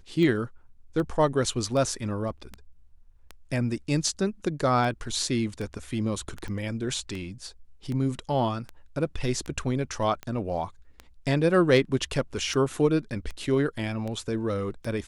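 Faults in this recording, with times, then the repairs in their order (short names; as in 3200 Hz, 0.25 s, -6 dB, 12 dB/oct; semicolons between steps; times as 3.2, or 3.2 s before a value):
tick 78 rpm -22 dBFS
6.48 pop -25 dBFS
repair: de-click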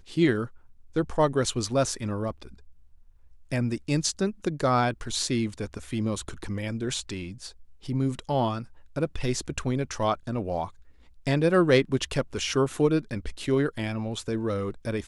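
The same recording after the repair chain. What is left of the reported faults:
none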